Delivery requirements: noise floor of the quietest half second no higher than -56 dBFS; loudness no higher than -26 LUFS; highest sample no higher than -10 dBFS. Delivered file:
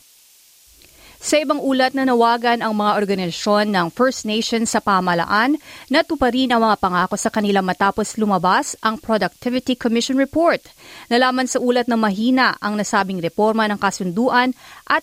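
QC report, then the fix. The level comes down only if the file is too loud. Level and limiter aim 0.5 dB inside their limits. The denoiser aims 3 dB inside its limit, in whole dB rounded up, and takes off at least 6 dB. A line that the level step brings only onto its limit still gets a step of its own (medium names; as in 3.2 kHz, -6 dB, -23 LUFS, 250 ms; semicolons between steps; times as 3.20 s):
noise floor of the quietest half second -51 dBFS: fail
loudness -18.0 LUFS: fail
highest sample -3.0 dBFS: fail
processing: trim -8.5 dB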